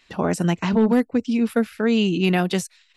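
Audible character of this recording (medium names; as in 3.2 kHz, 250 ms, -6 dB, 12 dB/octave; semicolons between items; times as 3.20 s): noise floor -61 dBFS; spectral tilt -5.5 dB/octave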